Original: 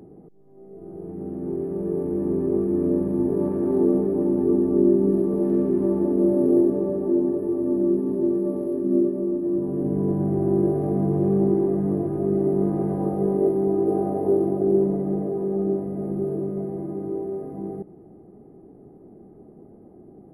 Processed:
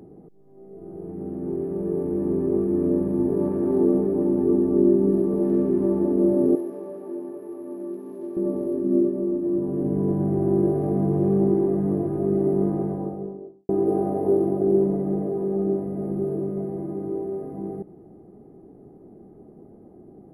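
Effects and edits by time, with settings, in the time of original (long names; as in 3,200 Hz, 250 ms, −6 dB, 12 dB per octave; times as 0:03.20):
0:06.55–0:08.37: high-pass filter 1,300 Hz 6 dB per octave
0:12.52–0:13.69: fade out and dull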